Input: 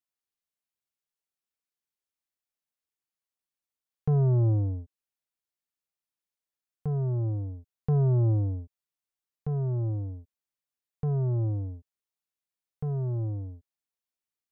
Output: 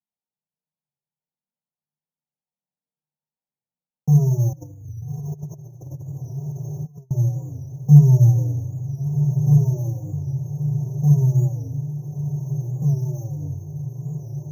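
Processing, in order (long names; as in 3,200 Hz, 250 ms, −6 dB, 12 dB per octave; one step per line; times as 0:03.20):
low-pass filter 1,000 Hz 24 dB per octave
parametric band 320 Hz −6.5 dB 0.59 octaves
convolution reverb RT60 0.50 s, pre-delay 3 ms, DRR 2.5 dB
decimation without filtering 7×
multi-voice chorus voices 2, 0.26 Hz, delay 18 ms, depth 3.7 ms
feedback delay with all-pass diffusion 1,280 ms, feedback 60%, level −8 dB
0:04.53–0:07.11: compressor whose output falls as the input rises −29 dBFS, ratio −0.5
parametric band 150 Hz +9 dB 0.25 octaves
wow of a warped record 45 rpm, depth 100 cents
level −7 dB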